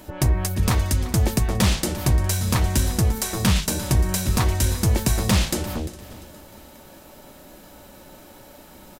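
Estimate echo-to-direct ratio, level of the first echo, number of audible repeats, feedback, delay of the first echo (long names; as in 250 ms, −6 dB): −14.5 dB, −16.0 dB, 5, repeats not evenly spaced, 347 ms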